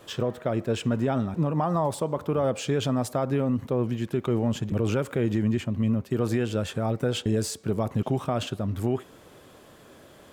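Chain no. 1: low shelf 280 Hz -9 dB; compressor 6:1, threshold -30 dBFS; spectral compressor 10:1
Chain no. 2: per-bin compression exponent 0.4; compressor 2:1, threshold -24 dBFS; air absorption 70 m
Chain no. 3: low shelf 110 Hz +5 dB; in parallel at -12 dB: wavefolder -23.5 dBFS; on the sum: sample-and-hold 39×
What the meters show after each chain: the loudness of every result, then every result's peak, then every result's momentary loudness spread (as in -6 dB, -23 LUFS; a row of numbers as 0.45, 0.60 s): -40.0, -26.5, -25.0 LUFS; -17.5, -10.5, -14.0 dBFS; 4, 4, 3 LU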